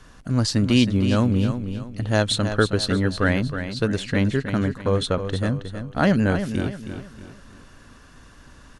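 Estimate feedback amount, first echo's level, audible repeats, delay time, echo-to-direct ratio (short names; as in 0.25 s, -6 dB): 37%, -9.0 dB, 4, 0.318 s, -8.5 dB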